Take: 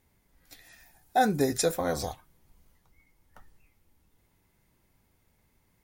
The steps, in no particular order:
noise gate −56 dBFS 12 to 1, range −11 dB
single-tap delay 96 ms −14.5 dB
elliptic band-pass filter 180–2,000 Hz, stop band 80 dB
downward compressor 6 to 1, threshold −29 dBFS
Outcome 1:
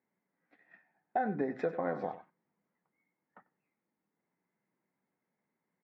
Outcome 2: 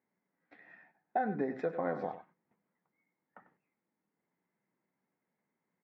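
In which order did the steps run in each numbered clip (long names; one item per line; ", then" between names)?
elliptic band-pass filter, then downward compressor, then single-tap delay, then noise gate
single-tap delay, then downward compressor, then noise gate, then elliptic band-pass filter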